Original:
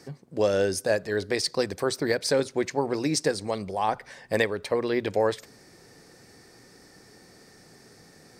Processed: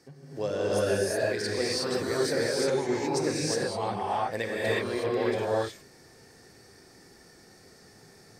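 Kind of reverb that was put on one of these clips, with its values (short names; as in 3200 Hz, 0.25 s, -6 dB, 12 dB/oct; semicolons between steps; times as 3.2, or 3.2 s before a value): non-linear reverb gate 0.39 s rising, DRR -7 dB; gain -9 dB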